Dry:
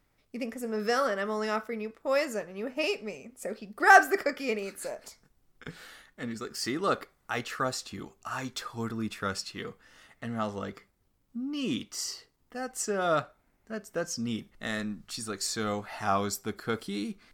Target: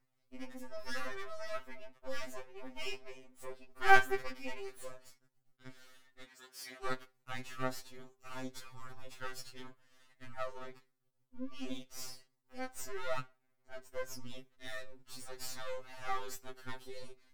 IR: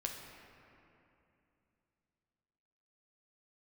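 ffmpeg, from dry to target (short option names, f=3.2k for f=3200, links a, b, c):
-filter_complex "[0:a]aeval=exprs='max(val(0),0)':c=same,asettb=1/sr,asplit=3[a][b][c];[a]atrim=end=6.234[d];[b]atrim=start=6.23:end=6.85,asetpts=PTS-STARTPTS,afade=t=in:d=0.004:c=qsin,afade=t=out:st=0.616:d=0.004:c=qsin,highpass=f=1.4k:p=1[e];[c]atrim=start=6.846[f];[d][e]acrossfade=d=0.004:c1=hsin:c2=qsin[g];[g][f]acrossfade=d=0.004:c1=qsin:c2=hsin,afftfilt=real='re*2.45*eq(mod(b,6),0)':imag='im*2.45*eq(mod(b,6),0)':win_size=2048:overlap=0.75,volume=-5dB"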